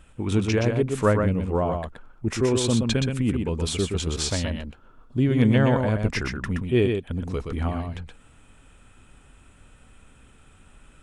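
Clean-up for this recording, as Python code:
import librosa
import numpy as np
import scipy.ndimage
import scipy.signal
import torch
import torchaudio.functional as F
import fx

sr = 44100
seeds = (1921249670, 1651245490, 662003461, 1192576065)

y = fx.fix_declip(x, sr, threshold_db=-8.0)
y = fx.fix_echo_inverse(y, sr, delay_ms=123, level_db=-5.0)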